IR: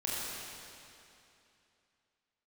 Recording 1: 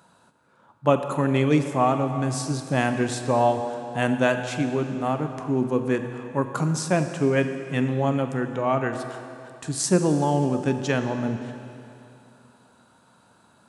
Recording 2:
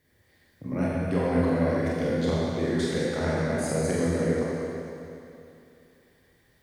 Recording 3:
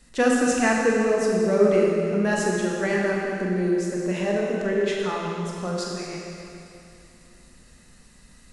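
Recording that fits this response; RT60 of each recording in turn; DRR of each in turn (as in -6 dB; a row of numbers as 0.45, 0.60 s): 2; 2.8, 2.8, 2.8 s; 7.0, -7.0, -3.0 dB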